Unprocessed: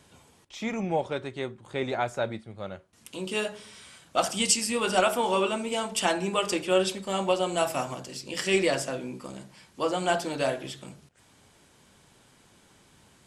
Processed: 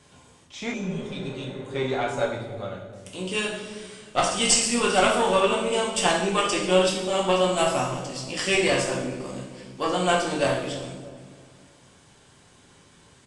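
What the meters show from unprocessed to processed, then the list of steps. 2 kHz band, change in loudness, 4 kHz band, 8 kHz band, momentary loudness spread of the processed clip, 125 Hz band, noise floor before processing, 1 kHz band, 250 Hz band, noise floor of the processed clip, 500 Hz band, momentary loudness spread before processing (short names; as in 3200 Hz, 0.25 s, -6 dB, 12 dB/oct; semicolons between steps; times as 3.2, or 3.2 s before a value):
+4.5 dB, +4.0 dB, +4.5 dB, +4.5 dB, 16 LU, +5.5 dB, -60 dBFS, +4.0 dB, +3.5 dB, -55 dBFS, +3.5 dB, 17 LU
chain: added harmonics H 4 -18 dB, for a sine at -8 dBFS; downsampling 22050 Hz; on a send: dark delay 0.314 s, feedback 35%, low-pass 400 Hz, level -6.5 dB; on the sum: two-slope reverb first 0.72 s, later 2.5 s, from -18 dB, DRR -1.5 dB; spectral repair 0.76–1.57, 290–2300 Hz after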